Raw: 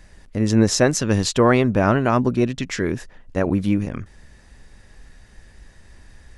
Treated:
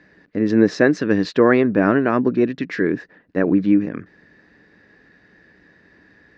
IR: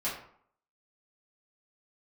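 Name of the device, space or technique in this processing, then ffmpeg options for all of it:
kitchen radio: -af "highpass=170,equalizer=frequency=180:width_type=q:width=4:gain=6,equalizer=frequency=300:width_type=q:width=4:gain=10,equalizer=frequency=440:width_type=q:width=4:gain=6,equalizer=frequency=860:width_type=q:width=4:gain=-3,equalizer=frequency=1700:width_type=q:width=4:gain=8,equalizer=frequency=3200:width_type=q:width=4:gain=-7,lowpass=frequency=4200:width=0.5412,lowpass=frequency=4200:width=1.3066,volume=-2dB"

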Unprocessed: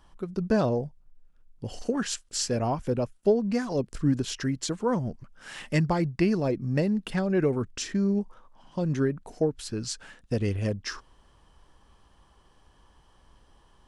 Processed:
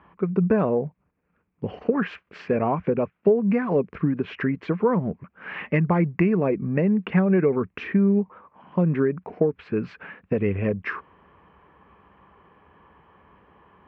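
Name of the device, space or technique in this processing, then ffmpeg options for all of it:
bass amplifier: -af "acompressor=threshold=-26dB:ratio=5,highpass=frequency=76:width=0.5412,highpass=frequency=76:width=1.3066,equalizer=frequency=120:width_type=q:width=4:gain=-7,equalizer=frequency=180:width_type=q:width=4:gain=7,equalizer=frequency=430:width_type=q:width=4:gain=6,equalizer=frequency=1100:width_type=q:width=4:gain=5,lowpass=frequency=2100:width=0.5412,lowpass=frequency=2100:width=1.3066,equalizer=frequency=2400:width_type=o:width=0.55:gain=10.5,volume=6dB"

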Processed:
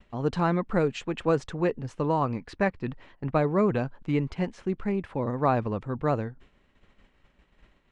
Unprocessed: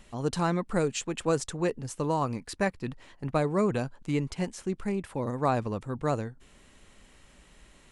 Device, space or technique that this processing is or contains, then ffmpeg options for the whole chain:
hearing-loss simulation: -af "lowpass=2900,agate=range=-33dB:threshold=-48dB:ratio=3:detection=peak,volume=2.5dB"

